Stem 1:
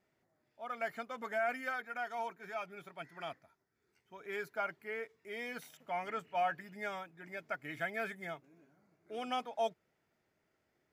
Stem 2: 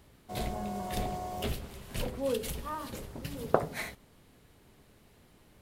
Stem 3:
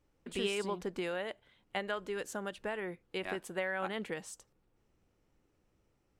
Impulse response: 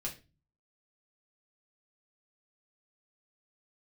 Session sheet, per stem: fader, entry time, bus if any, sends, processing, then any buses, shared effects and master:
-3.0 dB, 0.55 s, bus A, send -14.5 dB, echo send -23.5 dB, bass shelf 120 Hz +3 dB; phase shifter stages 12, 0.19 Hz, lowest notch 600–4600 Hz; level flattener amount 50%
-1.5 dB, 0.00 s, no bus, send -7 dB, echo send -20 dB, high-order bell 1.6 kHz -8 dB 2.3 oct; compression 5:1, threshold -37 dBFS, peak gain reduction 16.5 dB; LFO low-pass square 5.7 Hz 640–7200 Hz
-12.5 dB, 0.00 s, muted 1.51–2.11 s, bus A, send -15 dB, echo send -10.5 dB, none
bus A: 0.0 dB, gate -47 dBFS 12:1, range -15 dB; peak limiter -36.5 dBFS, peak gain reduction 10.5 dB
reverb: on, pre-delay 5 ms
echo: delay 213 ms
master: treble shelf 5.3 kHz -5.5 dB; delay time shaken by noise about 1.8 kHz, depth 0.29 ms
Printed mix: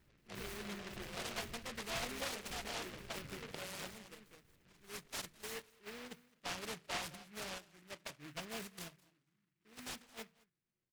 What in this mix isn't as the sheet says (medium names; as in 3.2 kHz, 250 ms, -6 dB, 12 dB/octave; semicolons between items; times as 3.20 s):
stem 1: missing level flattener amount 50%; stem 2 -1.5 dB -> -13.0 dB